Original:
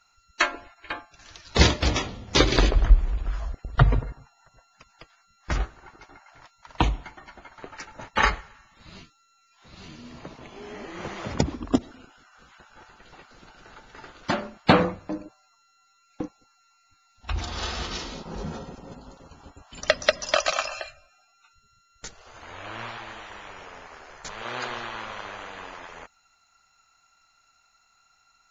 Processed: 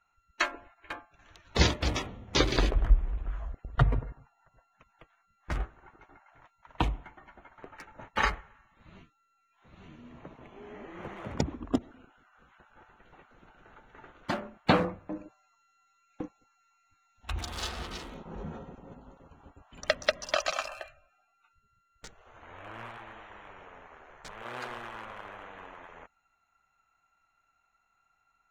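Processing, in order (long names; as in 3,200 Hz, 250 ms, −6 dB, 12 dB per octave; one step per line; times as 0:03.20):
adaptive Wiener filter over 9 samples
0:15.15–0:17.67: high-shelf EQ 2,300 Hz → 3,400 Hz +10.5 dB
level −6 dB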